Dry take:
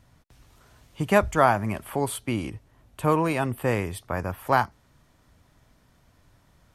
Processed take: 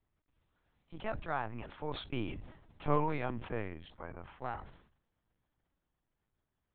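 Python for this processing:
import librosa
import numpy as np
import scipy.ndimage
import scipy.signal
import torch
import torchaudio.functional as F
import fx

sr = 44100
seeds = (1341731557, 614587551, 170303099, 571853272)

y = fx.doppler_pass(x, sr, speed_mps=24, closest_m=7.7, pass_at_s=2.62)
y = fx.lpc_vocoder(y, sr, seeds[0], excitation='pitch_kept', order=10)
y = fx.sustainer(y, sr, db_per_s=86.0)
y = y * librosa.db_to_amplitude(-4.5)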